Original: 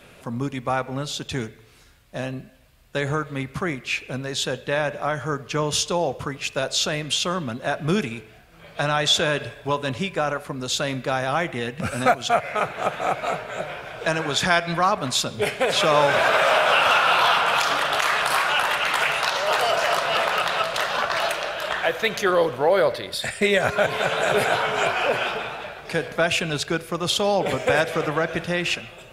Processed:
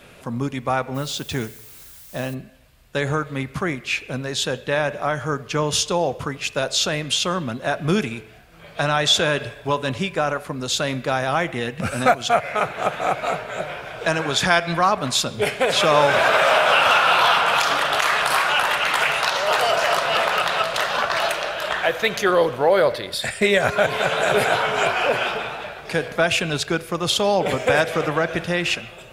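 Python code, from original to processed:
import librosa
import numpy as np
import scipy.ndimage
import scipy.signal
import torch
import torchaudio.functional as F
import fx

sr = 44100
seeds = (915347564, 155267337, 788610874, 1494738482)

y = fx.dmg_noise_colour(x, sr, seeds[0], colour='blue', level_db=-46.0, at=(0.94, 2.33), fade=0.02)
y = y * 10.0 ** (2.0 / 20.0)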